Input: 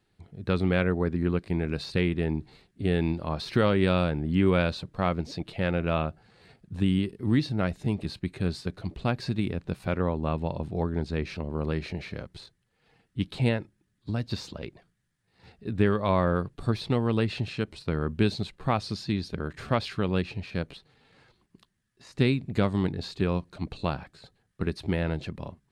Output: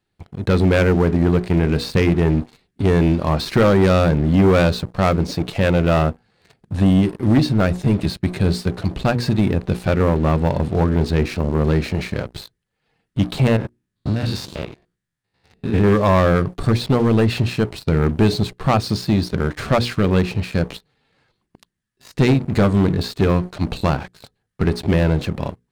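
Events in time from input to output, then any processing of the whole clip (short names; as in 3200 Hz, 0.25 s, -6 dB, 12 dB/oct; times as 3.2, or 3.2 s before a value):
13.47–15.93 stepped spectrum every 0.1 s
whole clip: notches 60/120/180/240/300/360/420/480 Hz; dynamic EQ 3400 Hz, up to -4 dB, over -44 dBFS, Q 0.81; sample leveller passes 3; gain +2.5 dB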